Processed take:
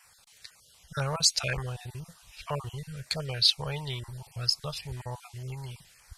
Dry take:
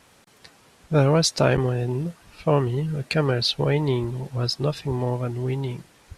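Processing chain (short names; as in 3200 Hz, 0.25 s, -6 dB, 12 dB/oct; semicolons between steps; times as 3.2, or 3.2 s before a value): random spectral dropouts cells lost 21%; LFO notch saw down 2 Hz 750–4000 Hz; passive tone stack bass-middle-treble 10-0-10; gain +3.5 dB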